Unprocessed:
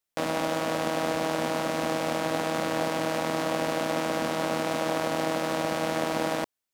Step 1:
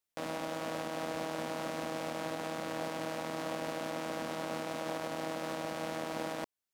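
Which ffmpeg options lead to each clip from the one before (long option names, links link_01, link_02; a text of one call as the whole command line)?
ffmpeg -i in.wav -af "alimiter=limit=-20.5dB:level=0:latency=1:release=362,volume=-3.5dB" out.wav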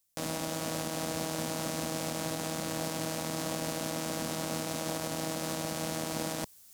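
ffmpeg -i in.wav -af "bass=frequency=250:gain=10,treble=frequency=4000:gain=14,areverse,acompressor=mode=upward:threshold=-38dB:ratio=2.5,areverse" out.wav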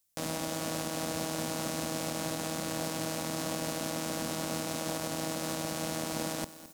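ffmpeg -i in.wav -af "aecho=1:1:216|432|648|864:0.158|0.0682|0.0293|0.0126" out.wav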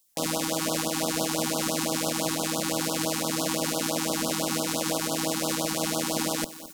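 ffmpeg -i in.wav -af "equalizer=frequency=90:width=1.1:gain=-13.5,afftfilt=real='re*(1-between(b*sr/1024,510*pow(2100/510,0.5+0.5*sin(2*PI*5.9*pts/sr))/1.41,510*pow(2100/510,0.5+0.5*sin(2*PI*5.9*pts/sr))*1.41))':imag='im*(1-between(b*sr/1024,510*pow(2100/510,0.5+0.5*sin(2*PI*5.9*pts/sr))/1.41,510*pow(2100/510,0.5+0.5*sin(2*PI*5.9*pts/sr))*1.41))':win_size=1024:overlap=0.75,volume=8.5dB" out.wav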